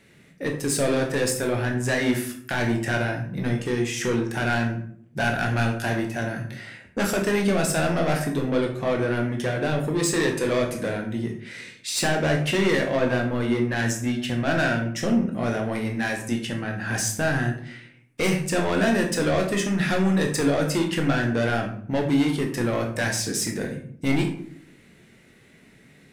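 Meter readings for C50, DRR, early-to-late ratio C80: 7.5 dB, 1.5 dB, 11.5 dB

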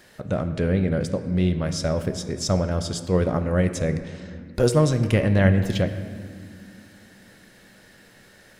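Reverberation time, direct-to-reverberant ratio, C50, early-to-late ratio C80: 2.1 s, 8.5 dB, 10.5 dB, 11.5 dB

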